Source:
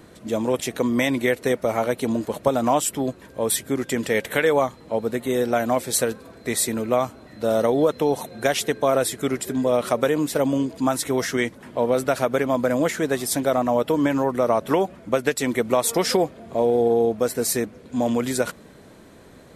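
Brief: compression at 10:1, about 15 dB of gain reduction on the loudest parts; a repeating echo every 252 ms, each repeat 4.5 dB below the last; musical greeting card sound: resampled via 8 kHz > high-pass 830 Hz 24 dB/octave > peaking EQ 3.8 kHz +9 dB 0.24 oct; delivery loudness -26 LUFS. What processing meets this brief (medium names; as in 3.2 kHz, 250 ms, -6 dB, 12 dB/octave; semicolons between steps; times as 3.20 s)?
compression 10:1, threshold -31 dBFS; feedback delay 252 ms, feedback 60%, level -4.5 dB; resampled via 8 kHz; high-pass 830 Hz 24 dB/octave; peaking EQ 3.8 kHz +9 dB 0.24 oct; trim +16 dB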